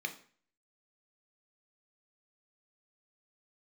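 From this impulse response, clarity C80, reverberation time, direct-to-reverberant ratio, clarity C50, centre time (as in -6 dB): 17.5 dB, 0.45 s, 5.5 dB, 13.0 dB, 9 ms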